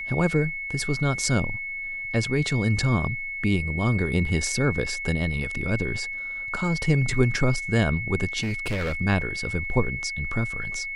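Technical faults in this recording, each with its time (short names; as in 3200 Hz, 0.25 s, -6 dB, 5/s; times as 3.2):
tone 2200 Hz -30 dBFS
8.4–8.94 clipped -23.5 dBFS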